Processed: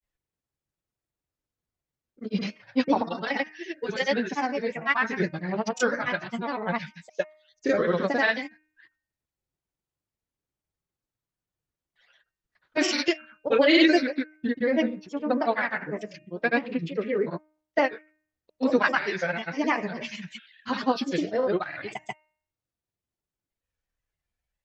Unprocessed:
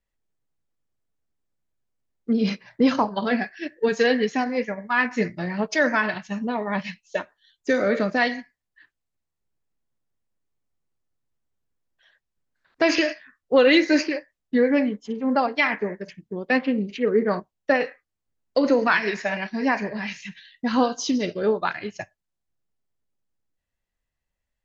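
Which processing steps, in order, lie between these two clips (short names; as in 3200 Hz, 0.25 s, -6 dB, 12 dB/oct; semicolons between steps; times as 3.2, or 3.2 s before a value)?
notch comb 230 Hz; grains 0.1 s, grains 20/s, pitch spread up and down by 3 st; de-hum 308 Hz, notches 9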